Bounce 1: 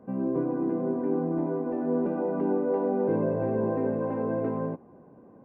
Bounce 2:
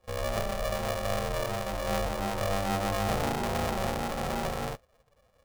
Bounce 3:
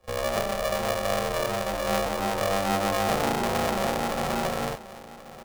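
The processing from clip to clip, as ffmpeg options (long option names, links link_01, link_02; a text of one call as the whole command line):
ffmpeg -i in.wav -af "afftdn=noise_reduction=16:noise_floor=-37,aeval=exprs='val(0)*sgn(sin(2*PI*290*n/s))':channel_layout=same,volume=-3dB" out.wav
ffmpeg -i in.wav -filter_complex "[0:a]acrossover=split=160[link_01][link_02];[link_01]acompressor=threshold=-44dB:ratio=5[link_03];[link_03][link_02]amix=inputs=2:normalize=0,aecho=1:1:1082:0.15,volume=5dB" out.wav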